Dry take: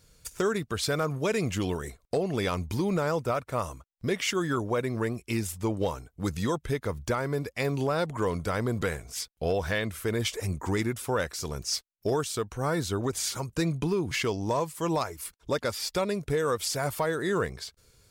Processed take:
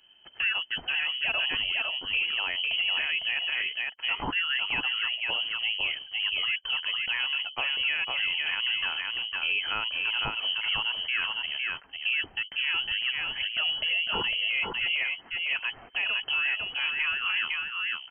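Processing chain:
single-tap delay 504 ms −4.5 dB
voice inversion scrambler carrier 3,100 Hz
brickwall limiter −19 dBFS, peak gain reduction 6 dB

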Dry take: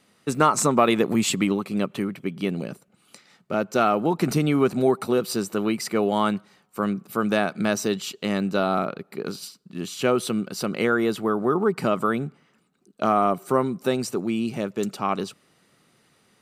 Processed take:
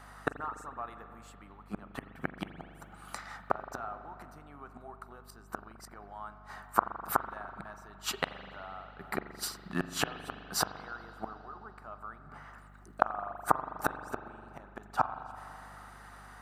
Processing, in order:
gate with flip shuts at −19 dBFS, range −35 dB
flat-topped bell 1,100 Hz +16 dB
spring reverb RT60 2.8 s, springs 41 ms, chirp 65 ms, DRR 9.5 dB
mains hum 50 Hz, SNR 17 dB
high-shelf EQ 8,600 Hz +6 dB

